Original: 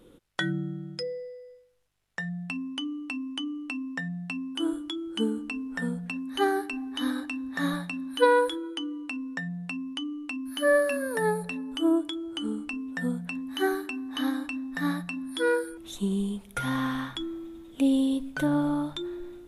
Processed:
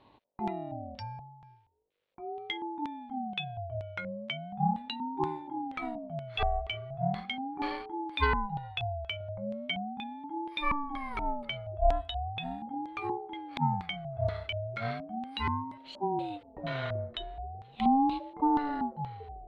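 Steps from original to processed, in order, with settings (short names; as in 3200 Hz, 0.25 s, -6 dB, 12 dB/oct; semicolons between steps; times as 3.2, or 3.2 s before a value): 9.2–9.76 comb 4.8 ms, depth 74%; LFO low-pass square 2.1 Hz 340–3000 Hz; ring modulator with a swept carrier 480 Hz, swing 25%, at 0.38 Hz; gain -4 dB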